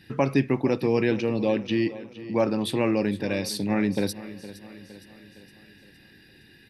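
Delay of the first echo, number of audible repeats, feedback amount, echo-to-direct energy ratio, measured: 0.463 s, 4, 52%, -14.5 dB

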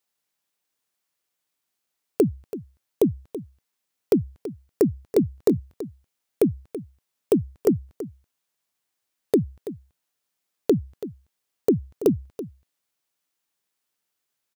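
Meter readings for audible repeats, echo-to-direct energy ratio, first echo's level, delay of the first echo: 1, -14.0 dB, -14.0 dB, 0.331 s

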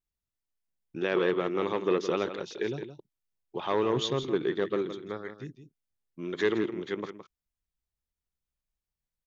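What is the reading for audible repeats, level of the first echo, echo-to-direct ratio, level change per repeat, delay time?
1, -10.5 dB, -10.5 dB, no steady repeat, 0.166 s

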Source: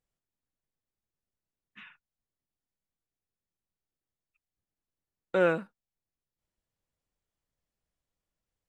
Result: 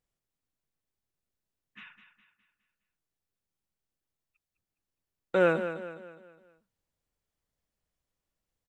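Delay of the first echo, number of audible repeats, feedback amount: 0.206 s, 4, 43%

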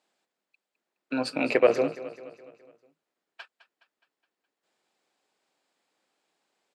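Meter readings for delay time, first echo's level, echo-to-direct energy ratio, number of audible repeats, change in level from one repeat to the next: 0.209 s, -15.0 dB, -13.5 dB, 4, -6.0 dB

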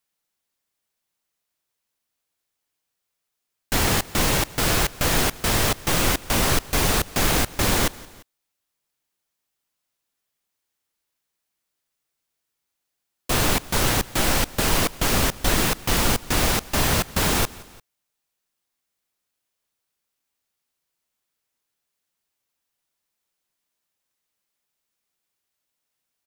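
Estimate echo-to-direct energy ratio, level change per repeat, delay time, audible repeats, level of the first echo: -20.5 dB, -5.0 dB, 0.173 s, 2, -21.5 dB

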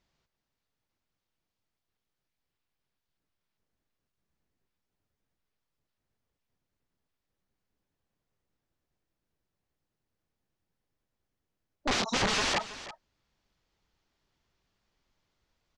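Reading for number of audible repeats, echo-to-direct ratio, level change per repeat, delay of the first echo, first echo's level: 1, -15.0 dB, no steady repeat, 0.325 s, -15.0 dB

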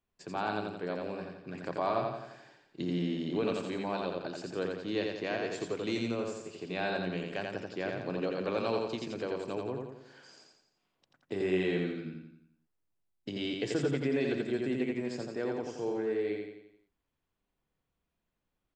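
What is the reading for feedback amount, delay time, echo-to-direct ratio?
49%, 86 ms, -2.0 dB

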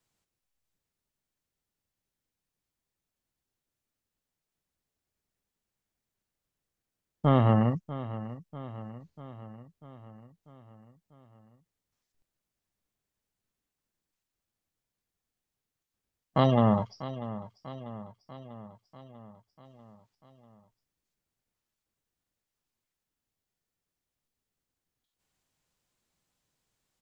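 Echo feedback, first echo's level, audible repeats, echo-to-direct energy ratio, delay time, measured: 60%, -14.5 dB, 5, -12.5 dB, 0.643 s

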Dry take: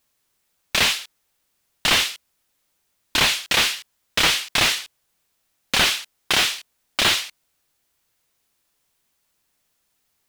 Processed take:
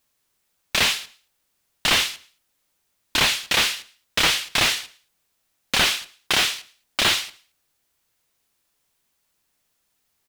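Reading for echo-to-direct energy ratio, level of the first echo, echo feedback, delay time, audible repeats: -23.0 dB, -23.5 dB, 36%, 0.111 s, 2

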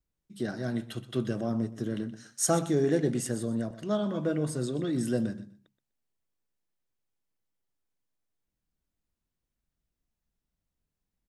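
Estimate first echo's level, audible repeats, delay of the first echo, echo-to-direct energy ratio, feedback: -16.0 dB, 2, 0.124 s, -16.0 dB, 20%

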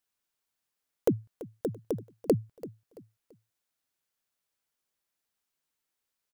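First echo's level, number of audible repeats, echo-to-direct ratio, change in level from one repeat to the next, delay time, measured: -17.0 dB, 2, -16.5 dB, -9.5 dB, 0.336 s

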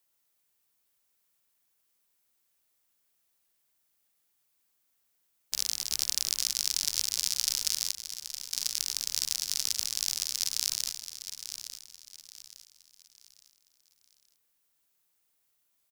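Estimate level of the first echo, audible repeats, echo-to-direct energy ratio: -10.0 dB, 3, -9.5 dB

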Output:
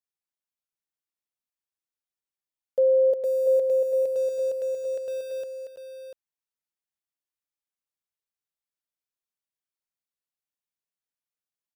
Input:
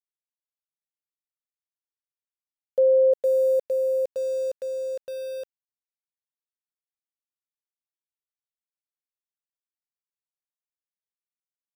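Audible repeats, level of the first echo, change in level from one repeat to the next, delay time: 2, -12.0 dB, no steady repeat, 0.325 s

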